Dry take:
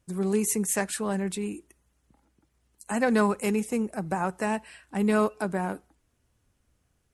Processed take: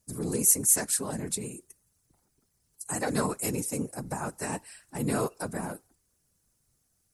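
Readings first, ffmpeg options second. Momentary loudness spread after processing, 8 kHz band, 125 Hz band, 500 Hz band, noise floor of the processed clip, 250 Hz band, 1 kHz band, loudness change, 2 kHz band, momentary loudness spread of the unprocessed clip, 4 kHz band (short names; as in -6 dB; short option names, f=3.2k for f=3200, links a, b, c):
18 LU, +7.0 dB, -1.0 dB, -6.5 dB, -74 dBFS, -6.5 dB, -6.0 dB, -0.5 dB, -6.5 dB, 10 LU, +0.5 dB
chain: -af "afftfilt=real='hypot(re,im)*cos(2*PI*random(0))':imag='hypot(re,im)*sin(2*PI*random(1))':win_size=512:overlap=0.75,aexciter=amount=3.7:drive=5.9:freq=4.3k"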